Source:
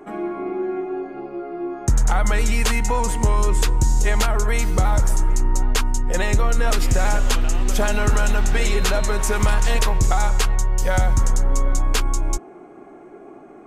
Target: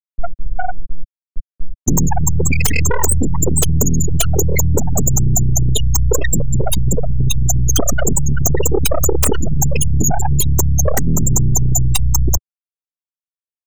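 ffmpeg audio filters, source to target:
-filter_complex "[0:a]aeval=exprs='0.398*(cos(1*acos(clip(val(0)/0.398,-1,1)))-cos(1*PI/2))+0.0708*(cos(2*acos(clip(val(0)/0.398,-1,1)))-cos(2*PI/2))+0.0447*(cos(3*acos(clip(val(0)/0.398,-1,1)))-cos(3*PI/2))+0.2*(cos(6*acos(clip(val(0)/0.398,-1,1)))-cos(6*PI/2))':c=same,aexciter=amount=2.3:drive=7.1:freq=2.7k,afftfilt=real='re*gte(hypot(re,im),0.794)':imag='im*gte(hypot(re,im),0.794)':win_size=1024:overlap=0.75,acrossover=split=100|6000[a][b][c];[a]acompressor=threshold=-24dB:ratio=4[d];[b]acompressor=threshold=-30dB:ratio=4[e];[c]acompressor=threshold=-26dB:ratio=4[f];[d][e][f]amix=inputs=3:normalize=0,aeval=exprs='0.596*sin(PI/2*6.31*val(0)/0.596)':c=same,adynamicequalizer=threshold=0.0251:dfrequency=380:dqfactor=1.9:tfrequency=380:tqfactor=1.9:attack=5:release=100:ratio=0.375:range=3:mode=boostabove:tftype=bell,acompressor=threshold=-13dB:ratio=6,volume=2.5dB"

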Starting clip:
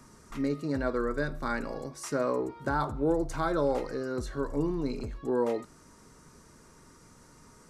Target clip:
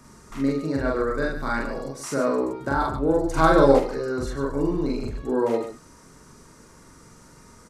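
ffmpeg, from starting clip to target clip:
-filter_complex "[0:a]aecho=1:1:43.73|142.9:1|0.398,asplit=3[a][b][c];[a]afade=t=out:st=3.36:d=0.02[d];[b]acontrast=76,afade=t=in:st=3.36:d=0.02,afade=t=out:st=3.78:d=0.02[e];[c]afade=t=in:st=3.78:d=0.02[f];[d][e][f]amix=inputs=3:normalize=0,volume=2.5dB"

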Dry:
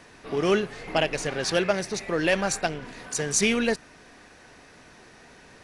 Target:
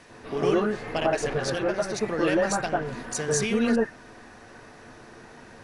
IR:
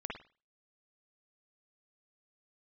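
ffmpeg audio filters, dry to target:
-filter_complex "[0:a]acompressor=threshold=-25dB:ratio=3,asettb=1/sr,asplit=3[a][b][c];[a]atrim=end=1.334[d];[b]atrim=start=1.33:end=1.81,asetpts=PTS-STARTPTS,afade=t=in:d=0.004:c=qsin,afade=t=out:st=0.476:d=0.004:c=qsin,tremolo=f=210:d=0.571[e];[c]atrim=start=1.806[f];[d][e]acrossfade=d=0.004:c1=hsin:c2=qsin[g];[g][f]acrossfade=d=0.004:c1=qsin:c2=hsin[h];[1:a]atrim=start_sample=2205,afade=t=out:st=0.14:d=0.01,atrim=end_sample=6615,asetrate=22932,aresample=44100[i];[h][i]afir=irnorm=-1:irlink=0"

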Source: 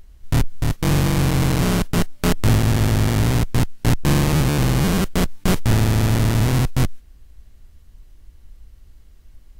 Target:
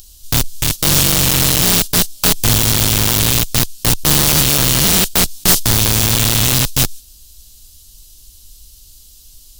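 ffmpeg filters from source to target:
-af "aexciter=amount=10.1:drive=8.2:freq=3.1k,aeval=exprs='(mod(1*val(0)+1,2)-1)/1':c=same,volume=-1dB"

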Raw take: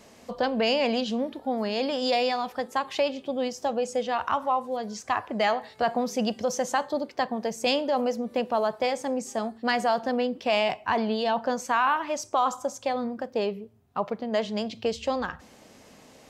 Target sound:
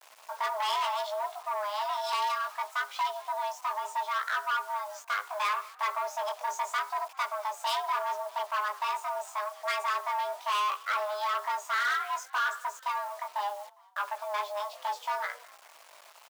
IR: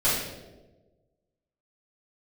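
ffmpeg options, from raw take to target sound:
-filter_complex "[0:a]aeval=exprs='0.237*(cos(1*acos(clip(val(0)/0.237,-1,1)))-cos(1*PI/2))+0.015*(cos(3*acos(clip(val(0)/0.237,-1,1)))-cos(3*PI/2))+0.0237*(cos(6*acos(clip(val(0)/0.237,-1,1)))-cos(6*PI/2))+0.015*(cos(8*acos(clip(val(0)/0.237,-1,1)))-cos(8*PI/2))':c=same,flanger=delay=17:depth=3.5:speed=0.71,asplit=2[a][b];[b]adynamicsmooth=sensitivity=5:basefreq=1.5k,volume=2dB[c];[a][c]amix=inputs=2:normalize=0,asoftclip=type=tanh:threshold=-21dB,afreqshift=410,acrusher=bits=7:mix=0:aa=0.000001,highpass=760,asplit=2[d][e];[e]asplit=3[f][g][h];[f]adelay=203,afreqshift=69,volume=-23dB[i];[g]adelay=406,afreqshift=138,volume=-29.2dB[j];[h]adelay=609,afreqshift=207,volume=-35.4dB[k];[i][j][k]amix=inputs=3:normalize=0[l];[d][l]amix=inputs=2:normalize=0,volume=-2.5dB"

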